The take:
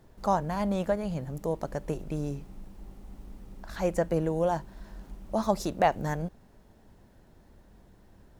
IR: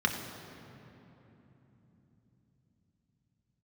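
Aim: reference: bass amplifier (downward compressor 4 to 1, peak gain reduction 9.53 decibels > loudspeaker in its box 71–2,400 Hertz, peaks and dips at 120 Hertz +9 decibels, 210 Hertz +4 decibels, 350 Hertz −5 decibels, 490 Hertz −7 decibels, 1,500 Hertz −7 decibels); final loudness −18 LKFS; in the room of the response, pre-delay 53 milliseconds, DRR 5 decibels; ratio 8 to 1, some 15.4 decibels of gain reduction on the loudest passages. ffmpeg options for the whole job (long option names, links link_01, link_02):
-filter_complex "[0:a]acompressor=threshold=-35dB:ratio=8,asplit=2[link_01][link_02];[1:a]atrim=start_sample=2205,adelay=53[link_03];[link_02][link_03]afir=irnorm=-1:irlink=0,volume=-15dB[link_04];[link_01][link_04]amix=inputs=2:normalize=0,acompressor=threshold=-42dB:ratio=4,highpass=frequency=71:width=0.5412,highpass=frequency=71:width=1.3066,equalizer=frequency=120:width_type=q:width=4:gain=9,equalizer=frequency=210:width_type=q:width=4:gain=4,equalizer=frequency=350:width_type=q:width=4:gain=-5,equalizer=frequency=490:width_type=q:width=4:gain=-7,equalizer=frequency=1500:width_type=q:width=4:gain=-7,lowpass=frequency=2400:width=0.5412,lowpass=frequency=2400:width=1.3066,volume=28.5dB"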